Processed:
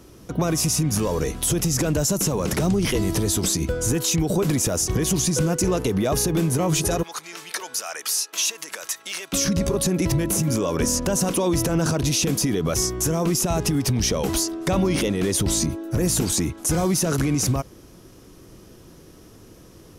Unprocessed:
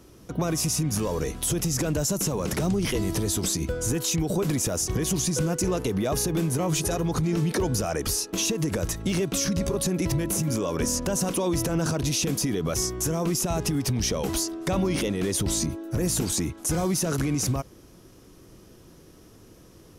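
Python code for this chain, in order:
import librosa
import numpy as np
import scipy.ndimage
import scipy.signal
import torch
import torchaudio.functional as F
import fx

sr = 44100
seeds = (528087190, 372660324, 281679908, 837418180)

y = fx.highpass(x, sr, hz=1200.0, slope=12, at=(7.03, 9.33))
y = F.gain(torch.from_numpy(y), 4.0).numpy()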